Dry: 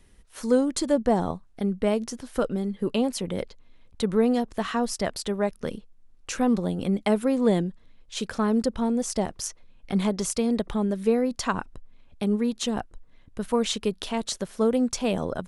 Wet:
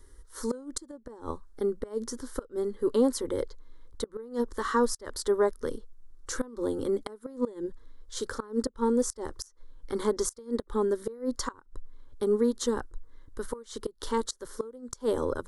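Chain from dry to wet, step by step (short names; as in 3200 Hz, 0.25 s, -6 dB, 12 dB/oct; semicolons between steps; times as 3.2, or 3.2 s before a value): fixed phaser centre 690 Hz, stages 6; flipped gate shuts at -19 dBFS, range -25 dB; harmonic-percussive split harmonic +6 dB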